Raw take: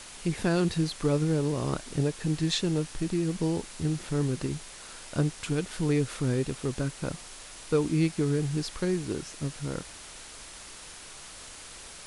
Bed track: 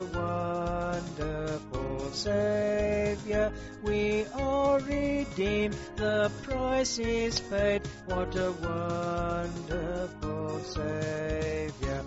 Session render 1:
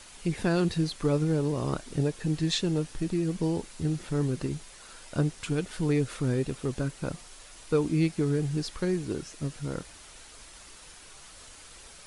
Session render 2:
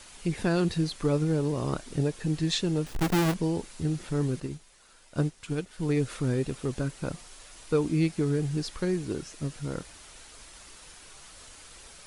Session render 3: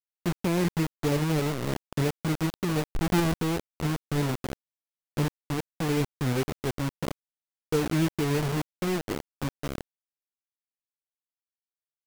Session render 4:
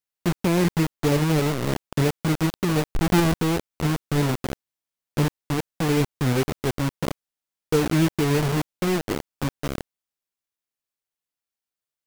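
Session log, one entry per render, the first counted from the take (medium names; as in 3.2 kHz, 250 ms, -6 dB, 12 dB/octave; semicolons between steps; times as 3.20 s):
noise reduction 6 dB, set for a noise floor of -46 dBFS
2.86–3.34 s: square wave that keeps the level; 4.40–5.97 s: upward expansion, over -41 dBFS
median filter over 41 samples; bit crusher 5-bit
trim +5 dB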